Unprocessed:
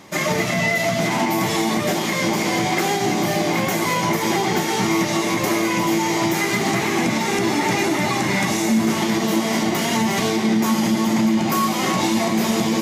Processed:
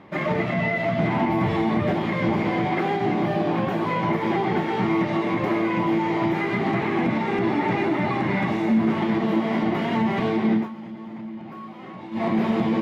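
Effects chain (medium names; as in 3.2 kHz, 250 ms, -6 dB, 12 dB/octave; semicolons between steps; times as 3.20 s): 0.98–2.51 s: peaking EQ 78 Hz +13.5 dB 1 oct; 3.28–3.91 s: band-stop 2.1 kHz, Q 6.9; distance through air 480 m; 10.55–12.25 s: dip -15.5 dB, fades 0.14 s; trim -1 dB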